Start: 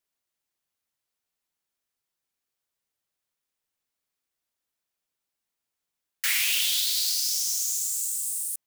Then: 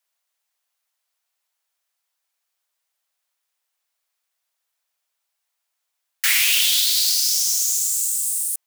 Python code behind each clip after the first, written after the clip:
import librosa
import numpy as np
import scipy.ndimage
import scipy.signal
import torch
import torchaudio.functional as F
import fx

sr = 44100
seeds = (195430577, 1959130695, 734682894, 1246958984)

y = scipy.signal.sosfilt(scipy.signal.butter(4, 580.0, 'highpass', fs=sr, output='sos'), x)
y = y * librosa.db_to_amplitude(7.0)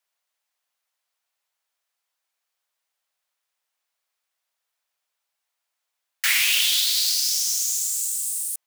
y = fx.high_shelf(x, sr, hz=5400.0, db=-5.0)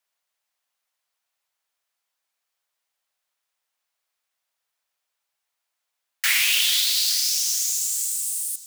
y = fx.echo_feedback(x, sr, ms=430, feedback_pct=44, wet_db=-17.0)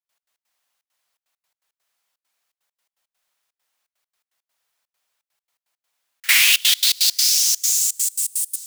y = fx.step_gate(x, sr, bpm=167, pattern='.x.x.xxxx.xxx.x', floor_db=-24.0, edge_ms=4.5)
y = y * librosa.db_to_amplitude(6.0)